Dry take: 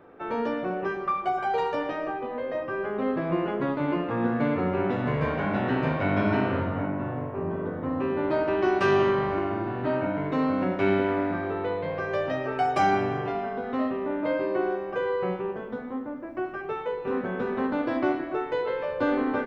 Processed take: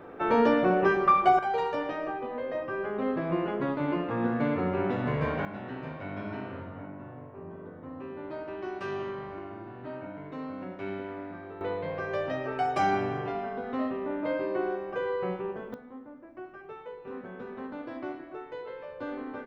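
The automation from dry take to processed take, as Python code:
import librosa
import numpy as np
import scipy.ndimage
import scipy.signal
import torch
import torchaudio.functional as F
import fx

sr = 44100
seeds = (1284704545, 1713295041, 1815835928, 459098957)

y = fx.gain(x, sr, db=fx.steps((0.0, 6.0), (1.39, -2.5), (5.45, -13.0), (11.61, -3.5), (15.74, -12.0)))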